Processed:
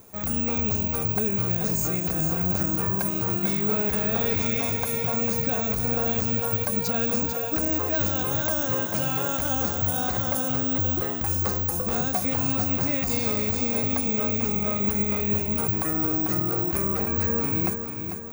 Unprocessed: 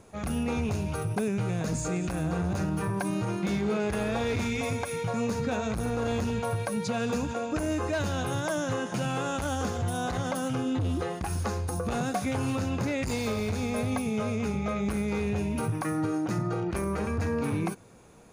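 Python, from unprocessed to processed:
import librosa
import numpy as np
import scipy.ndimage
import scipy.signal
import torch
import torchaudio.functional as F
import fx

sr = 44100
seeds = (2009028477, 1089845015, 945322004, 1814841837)

p1 = fx.high_shelf(x, sr, hz=6100.0, db=9.0)
p2 = p1 + fx.echo_feedback(p1, sr, ms=445, feedback_pct=52, wet_db=-8, dry=0)
y = (np.kron(p2[::2], np.eye(2)[0]) * 2)[:len(p2)]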